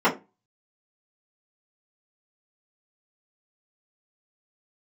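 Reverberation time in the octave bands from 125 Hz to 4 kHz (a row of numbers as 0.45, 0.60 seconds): 0.35, 0.30, 0.25, 0.25, 0.20, 0.15 seconds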